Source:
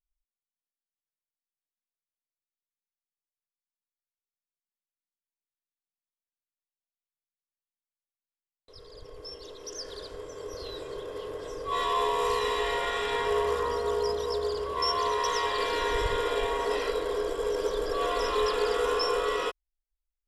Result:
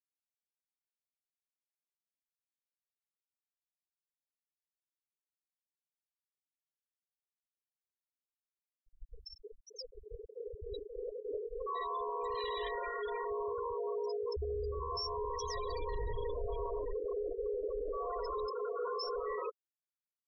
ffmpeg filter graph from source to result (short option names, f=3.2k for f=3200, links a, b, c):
-filter_complex "[0:a]asettb=1/sr,asplit=3[a][b][c];[a]atrim=end=8.844[d];[b]atrim=start=8.84:end=11.67,asetpts=PTS-STARTPTS,afade=t=in:d=0.004:c=qsin,afade=t=out:st=2.826:d=0.004:c=qsin,aphaser=in_gain=1:out_gain=1:delay=2.1:decay=0.46:speed=1.6:type=triangular,aecho=1:1:98|196|294|392|490:0.531|0.223|0.0936|0.0393|0.0165,atrim=end_sample=124803[e];[c]atrim=start=11.666[f];[d][e]acrossfade=d=0.004:c1=hsin:c2=qsin[g];[g][f]acrossfade=d=0.004:c1=qsin:c2=hsin,asettb=1/sr,asplit=3[h][i][j];[h]atrim=end=12.204[k];[i]atrim=start=12.2:end=12.69,asetpts=PTS-STARTPTS,afade=t=in:d=0.004:c=qsin,afade=t=out:st=0.486:d=0.004:c=qsin,aeval=exprs='val(0)+0.5*0.0266*sgn(val(0))':c=same,highshelf=f=4k:g=8.5[l];[j]atrim=start=12.686[m];[k][l]acrossfade=d=0.004:c1=hsin:c2=qsin[n];[n][m]acrossfade=d=0.004:c1=qsin:c2=hsin,asettb=1/sr,asplit=3[o][p][q];[o]atrim=end=14.364[r];[p]atrim=start=14.36:end=16.93,asetpts=PTS-STARTPTS,afade=t=in:d=0.004:c=qsin,afade=t=out:st=2.566:d=0.004:c=qsin,bass=f=250:g=12,treble=f=4k:g=6,acrossover=split=230|1400[s][t][u];[t]adelay=60[v];[u]adelay=150[w];[s][v][w]amix=inputs=3:normalize=0,atrim=end_sample=113337[x];[q]atrim=start=16.926[y];[r][x]acrossfade=d=0.004:c1=hsin:c2=qsin[z];[z][y]acrossfade=d=0.004:c1=qsin:c2=hsin,asettb=1/sr,asplit=3[aa][ab][ac];[aa]atrim=end=18.504[ad];[ab]atrim=start=18.5:end=19.03,asetpts=PTS-STARTPTS,afade=t=in:d=0.004:c=qsin,afade=t=out:st=0.526:d=0.004:c=qsin,highpass=500,volume=25dB,asoftclip=hard,volume=-25dB[ae];[ac]atrim=start=19.026[af];[ad][ae]acrossfade=d=0.004:c1=hsin:c2=qsin[ag];[ag][af]acrossfade=d=0.004:c1=qsin:c2=hsin,afftfilt=real='re*gte(hypot(re,im),0.0891)':imag='im*gte(hypot(re,im),0.0891)':win_size=1024:overlap=0.75,alimiter=level_in=2dB:limit=-24dB:level=0:latency=1:release=29,volume=-2dB,volume=-4.5dB"